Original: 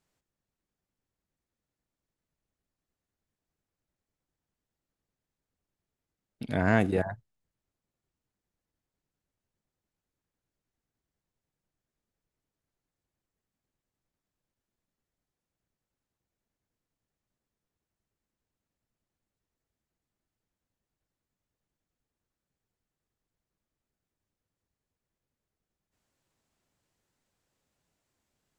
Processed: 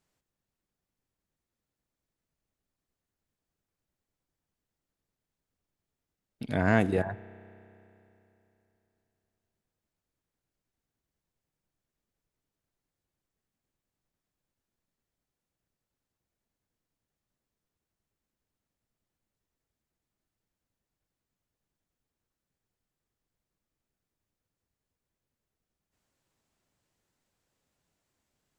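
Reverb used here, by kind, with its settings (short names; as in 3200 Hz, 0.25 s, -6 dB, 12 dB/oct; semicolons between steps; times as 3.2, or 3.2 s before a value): spring tank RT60 3.2 s, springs 31 ms, chirp 35 ms, DRR 18.5 dB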